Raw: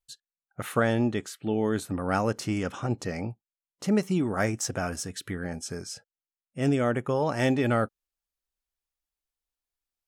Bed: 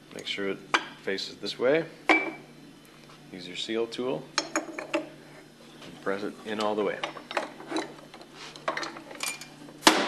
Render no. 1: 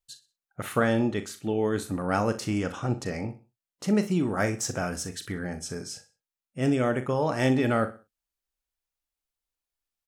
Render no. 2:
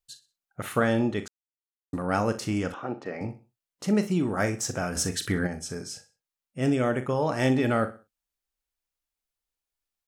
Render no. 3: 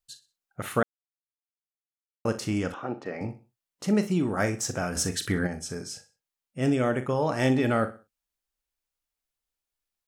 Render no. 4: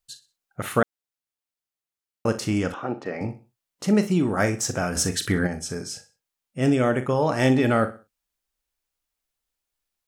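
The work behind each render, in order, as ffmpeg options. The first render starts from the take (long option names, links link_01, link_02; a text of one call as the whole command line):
ffmpeg -i in.wav -filter_complex "[0:a]asplit=2[link_01][link_02];[link_02]adelay=39,volume=-11dB[link_03];[link_01][link_03]amix=inputs=2:normalize=0,aecho=1:1:62|124|186:0.168|0.0571|0.0194" out.wav
ffmpeg -i in.wav -filter_complex "[0:a]asettb=1/sr,asplit=3[link_01][link_02][link_03];[link_01]atrim=end=2.744[link_04];[link_02]atrim=start=2.74:end=3.21,asetpts=PTS-STARTPTS,afade=type=in:duration=0.004:curve=qsin,afade=type=out:start_time=0.466:duration=0.004:curve=qsin,highpass=290,lowpass=2300[link_05];[link_03]atrim=start=3.206[link_06];[link_04][link_05]acrossfade=duration=0.004:curve1=hsin:curve2=qsin[link_07];[link_07][link_06]acrossfade=duration=0.004:curve1=qsin:curve2=hsin,asplit=3[link_08][link_09][link_10];[link_08]afade=type=out:start_time=4.95:duration=0.02[link_11];[link_09]acontrast=74,afade=type=in:start_time=4.95:duration=0.02,afade=type=out:start_time=5.46:duration=0.02[link_12];[link_10]afade=type=in:start_time=5.46:duration=0.02[link_13];[link_11][link_12][link_13]amix=inputs=3:normalize=0,asplit=3[link_14][link_15][link_16];[link_14]atrim=end=1.28,asetpts=PTS-STARTPTS,afade=type=out:start_time=1.276:duration=0.004:curve=hsin[link_17];[link_15]atrim=start=1.28:end=1.93,asetpts=PTS-STARTPTS,volume=0[link_18];[link_16]atrim=start=1.93,asetpts=PTS-STARTPTS,afade=type=in:duration=0.004:curve=hsin[link_19];[link_17][link_18][link_19]concat=n=3:v=0:a=1" out.wav
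ffmpeg -i in.wav -filter_complex "[0:a]asplit=3[link_01][link_02][link_03];[link_01]atrim=end=0.83,asetpts=PTS-STARTPTS,afade=type=out:start_time=0.826:duration=0.004:curve=hsin[link_04];[link_02]atrim=start=0.83:end=2.25,asetpts=PTS-STARTPTS,volume=0[link_05];[link_03]atrim=start=2.25,asetpts=PTS-STARTPTS,afade=type=in:duration=0.004:curve=hsin[link_06];[link_04][link_05][link_06]concat=n=3:v=0:a=1" out.wav
ffmpeg -i in.wav -af "volume=4dB" out.wav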